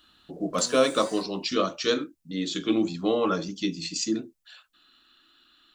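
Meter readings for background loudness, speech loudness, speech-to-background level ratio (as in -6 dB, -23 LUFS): -42.0 LUFS, -27.0 LUFS, 15.0 dB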